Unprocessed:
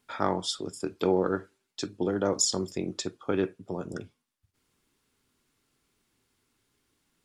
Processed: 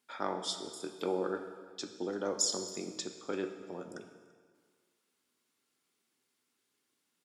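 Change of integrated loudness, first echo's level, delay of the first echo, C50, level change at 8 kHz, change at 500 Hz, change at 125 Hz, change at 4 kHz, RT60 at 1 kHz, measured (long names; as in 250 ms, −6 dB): −6.5 dB, −22.5 dB, 338 ms, 9.0 dB, −4.5 dB, −7.5 dB, −14.0 dB, −4.5 dB, 1.8 s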